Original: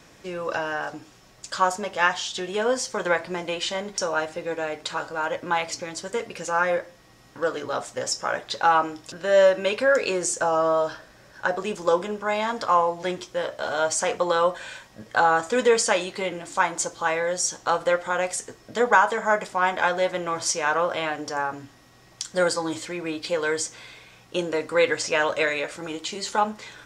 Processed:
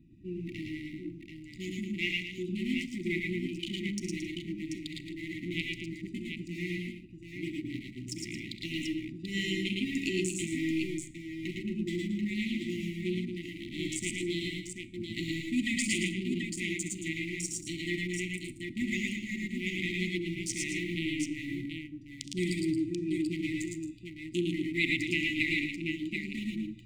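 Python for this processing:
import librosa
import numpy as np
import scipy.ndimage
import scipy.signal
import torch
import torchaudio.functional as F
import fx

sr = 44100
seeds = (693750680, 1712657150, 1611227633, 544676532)

p1 = fx.wiener(x, sr, points=41)
p2 = fx.peak_eq(p1, sr, hz=5600.0, db=-11.0, octaves=0.87)
p3 = np.sign(p2) * np.maximum(np.abs(p2) - 10.0 ** (-40.5 / 20.0), 0.0)
p4 = p2 + F.gain(torch.from_numpy(p3), -10.0).numpy()
p5 = fx.brickwall_bandstop(p4, sr, low_hz=370.0, high_hz=1900.0)
p6 = p5 + fx.echo_multitap(p5, sr, ms=(66, 106, 116, 223, 267, 736), db=(-11.5, -4.5, -4.0, -10.0, -20.0, -6.0), dry=0)
p7 = fx.rev_schroeder(p6, sr, rt60_s=0.58, comb_ms=28, drr_db=18.0)
y = F.gain(torch.from_numpy(p7), -1.5).numpy()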